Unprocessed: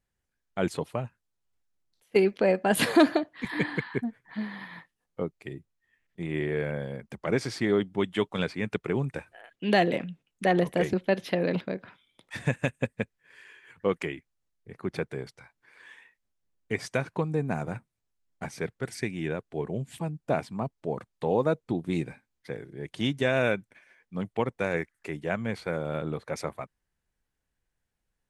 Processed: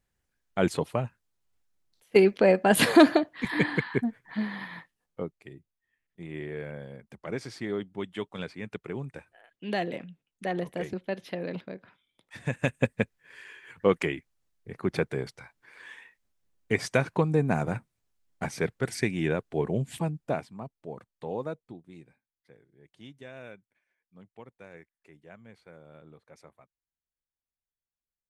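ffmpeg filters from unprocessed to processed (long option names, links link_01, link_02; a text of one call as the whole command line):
ffmpeg -i in.wav -af "volume=14.5dB,afade=type=out:start_time=4.63:duration=0.86:silence=0.298538,afade=type=in:start_time=12.41:duration=0.4:silence=0.266073,afade=type=out:start_time=19.97:duration=0.51:silence=0.237137,afade=type=out:start_time=21.42:duration=0.42:silence=0.266073" out.wav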